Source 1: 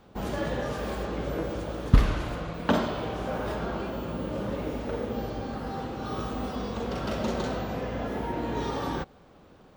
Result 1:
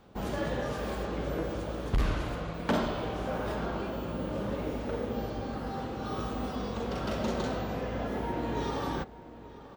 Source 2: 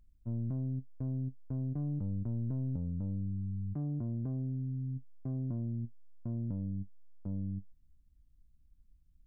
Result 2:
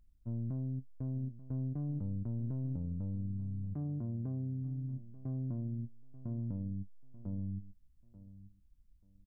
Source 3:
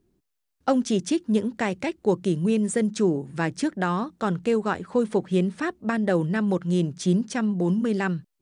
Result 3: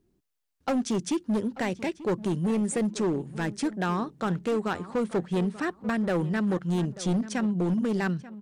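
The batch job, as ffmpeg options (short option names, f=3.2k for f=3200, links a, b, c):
-filter_complex "[0:a]asoftclip=type=hard:threshold=-20dB,asplit=2[a][b];[b]adelay=887,lowpass=f=2.6k:p=1,volume=-16dB,asplit=2[c][d];[d]adelay=887,lowpass=f=2.6k:p=1,volume=0.21[e];[a][c][e]amix=inputs=3:normalize=0,volume=-2dB"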